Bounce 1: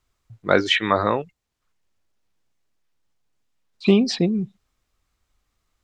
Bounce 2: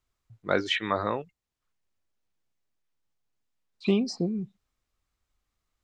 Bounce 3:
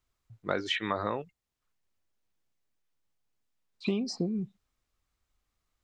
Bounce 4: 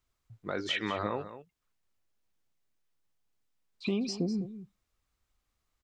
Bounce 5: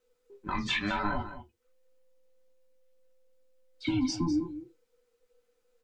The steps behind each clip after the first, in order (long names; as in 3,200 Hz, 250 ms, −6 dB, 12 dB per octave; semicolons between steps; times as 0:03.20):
healed spectral selection 0:04.11–0:04.31, 1,300–4,800 Hz both; level −8 dB
downward compressor 5 to 1, threshold −26 dBFS, peak gain reduction 7.5 dB
brickwall limiter −20 dBFS, peak gain reduction 8 dB; single-tap delay 202 ms −12.5 dB
frequency inversion band by band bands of 500 Hz; convolution reverb RT60 0.15 s, pre-delay 4 ms, DRR 1.5 dB